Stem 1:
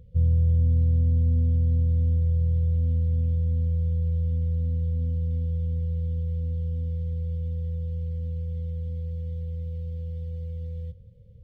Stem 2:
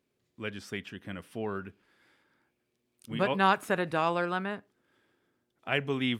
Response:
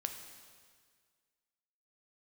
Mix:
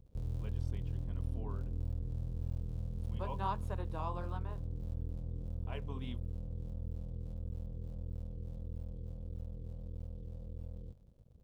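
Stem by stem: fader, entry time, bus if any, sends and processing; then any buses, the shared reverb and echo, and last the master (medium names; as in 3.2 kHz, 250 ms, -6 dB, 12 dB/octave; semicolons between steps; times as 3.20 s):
-4.5 dB, 0.00 s, no send, cycle switcher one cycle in 2, muted; compression 2.5:1, threshold -27 dBFS, peak gain reduction 6 dB
-12.0 dB, 0.00 s, no send, peaking EQ 1 kHz +14 dB 0.44 oct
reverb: none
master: FFT filter 580 Hz 0 dB, 1.9 kHz -11 dB, 3.6 kHz -2 dB; flange 1.6 Hz, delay 0.8 ms, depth 8.2 ms, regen -51%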